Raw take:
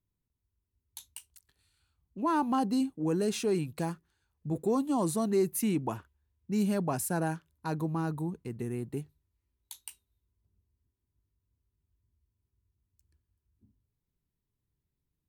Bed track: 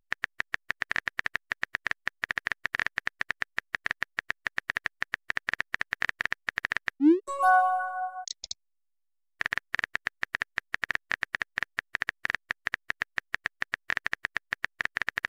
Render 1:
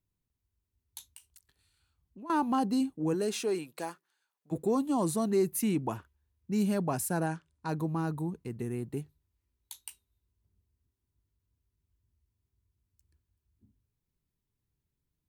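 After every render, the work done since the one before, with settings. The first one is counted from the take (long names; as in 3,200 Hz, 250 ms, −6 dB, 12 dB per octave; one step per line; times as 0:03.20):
0:01.10–0:02.30: downward compressor 2.5 to 1, threshold −50 dBFS
0:03.13–0:04.51: high-pass filter 220 Hz → 850 Hz
0:07.26–0:07.69: Chebyshev low-pass filter 10,000 Hz, order 10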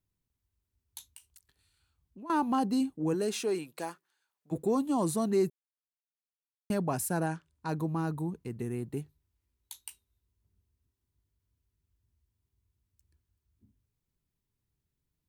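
0:05.50–0:06.70: silence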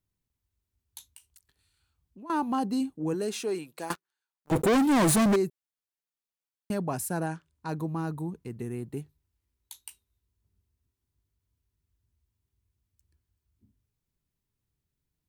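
0:03.90–0:05.36: leveller curve on the samples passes 5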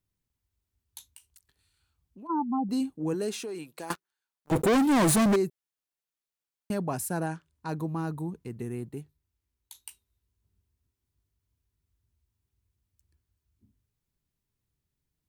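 0:02.27–0:02.69: expanding power law on the bin magnitudes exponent 2.4
0:03.34–0:03.89: downward compressor, threshold −33 dBFS
0:08.89–0:09.75: clip gain −3 dB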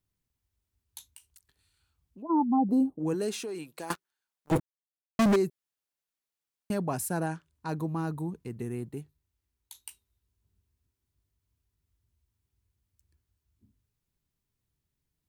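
0:02.22–0:02.99: drawn EQ curve 120 Hz 0 dB, 660 Hz +9 dB, 2,300 Hz −21 dB, 7,300 Hz −15 dB, 12,000 Hz −7 dB
0:04.60–0:05.19: silence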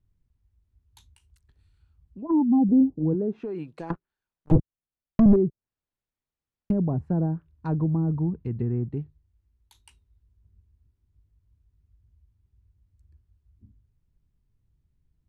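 treble cut that deepens with the level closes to 590 Hz, closed at −27.5 dBFS
RIAA equalisation playback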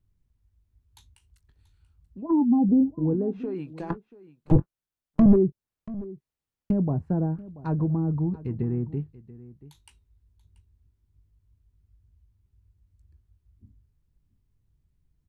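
double-tracking delay 21 ms −14 dB
single-tap delay 684 ms −18.5 dB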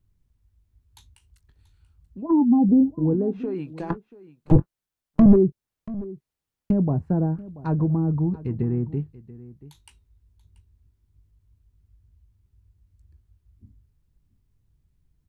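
level +3 dB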